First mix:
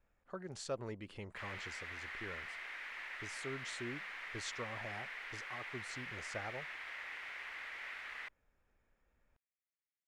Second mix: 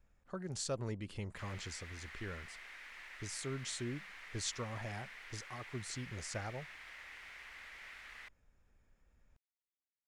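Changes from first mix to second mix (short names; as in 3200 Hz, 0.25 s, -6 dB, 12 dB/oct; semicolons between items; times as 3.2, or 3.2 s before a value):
background -6.5 dB; master: add tone controls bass +8 dB, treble +9 dB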